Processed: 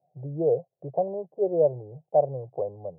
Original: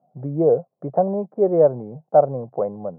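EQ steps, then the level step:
low-pass filter 1,500 Hz 24 dB per octave
low-shelf EQ 210 Hz +10.5 dB
phaser with its sweep stopped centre 550 Hz, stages 4
−7.5 dB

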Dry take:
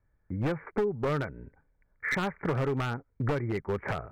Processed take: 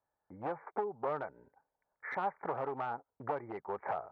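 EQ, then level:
resonant band-pass 810 Hz, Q 3
high-frequency loss of the air 58 metres
+4.0 dB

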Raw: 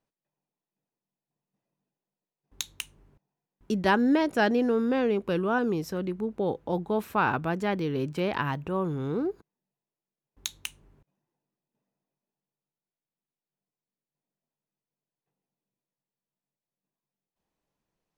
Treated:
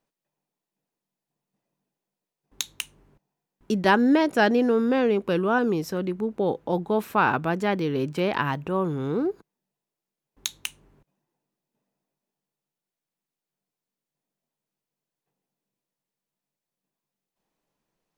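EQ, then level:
parametric band 64 Hz −11 dB 1.2 octaves
+4.0 dB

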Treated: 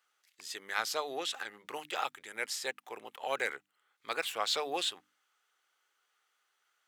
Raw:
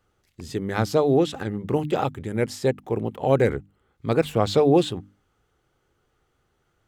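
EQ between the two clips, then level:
high-pass filter 1,400 Hz 12 dB per octave
0.0 dB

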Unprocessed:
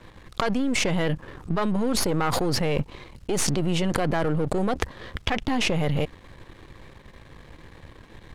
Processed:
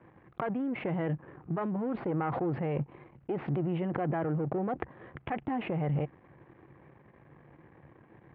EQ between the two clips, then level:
high-frequency loss of the air 390 metres
loudspeaker in its box 120–2,500 Hz, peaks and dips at 140 Hz +7 dB, 340 Hz +5 dB, 760 Hz +5 dB
−8.0 dB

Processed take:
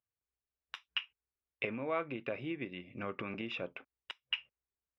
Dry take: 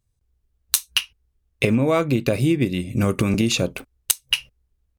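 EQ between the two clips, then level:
Savitzky-Golay smoothing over 25 samples
high-pass filter 1,300 Hz 6 dB per octave
high-frequency loss of the air 270 metres
−7.0 dB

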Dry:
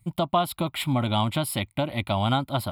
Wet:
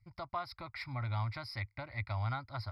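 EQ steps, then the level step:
drawn EQ curve 110 Hz 0 dB, 170 Hz −21 dB, 650 Hz −13 dB, 2,100 Hz +2 dB, 3,100 Hz −26 dB, 5,000 Hz +7 dB, 7,200 Hz −28 dB
−6.0 dB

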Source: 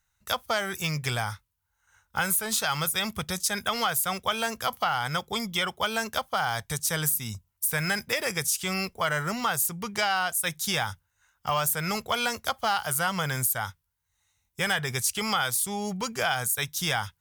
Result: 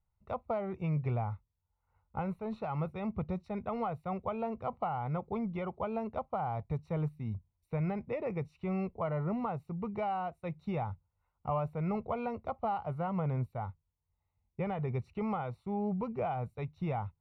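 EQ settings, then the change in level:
moving average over 27 samples
high-frequency loss of the air 390 metres
0.0 dB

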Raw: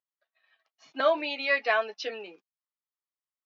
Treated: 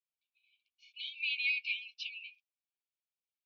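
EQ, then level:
linear-phase brick-wall high-pass 2,200 Hz
high-frequency loss of the air 190 metres
high-shelf EQ 3,400 Hz −10.5 dB
+7.5 dB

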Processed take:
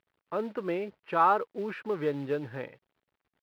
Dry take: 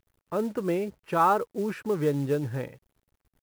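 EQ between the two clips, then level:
high-pass filter 430 Hz 6 dB per octave
high-frequency loss of the air 400 metres
high-shelf EQ 2,500 Hz +11.5 dB
0.0 dB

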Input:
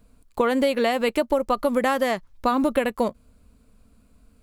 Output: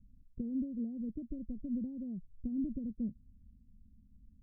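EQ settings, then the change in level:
inverse Chebyshev low-pass filter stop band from 990 Hz, stop band 70 dB
−3.5 dB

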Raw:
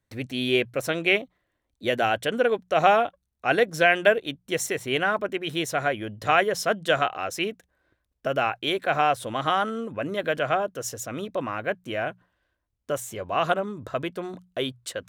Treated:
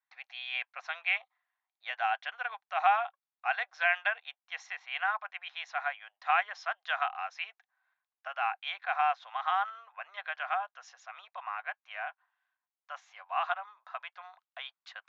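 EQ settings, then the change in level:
Chebyshev band-pass filter 750–6,800 Hz, order 5
high-frequency loss of the air 270 metres
notch filter 3,000 Hz, Q 20
−3.0 dB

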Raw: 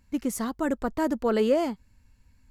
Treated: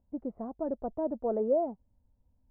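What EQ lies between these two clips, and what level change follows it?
transistor ladder low-pass 780 Hz, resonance 55%
0.0 dB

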